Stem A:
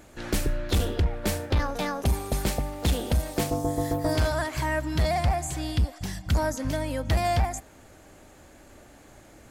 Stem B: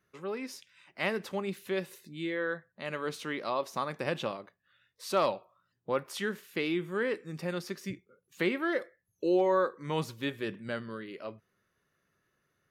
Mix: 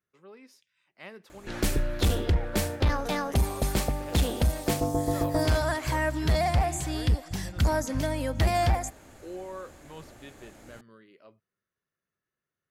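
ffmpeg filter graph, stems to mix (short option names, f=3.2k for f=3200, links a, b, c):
-filter_complex "[0:a]adelay=1300,volume=0dB[a];[1:a]volume=-13.5dB[b];[a][b]amix=inputs=2:normalize=0"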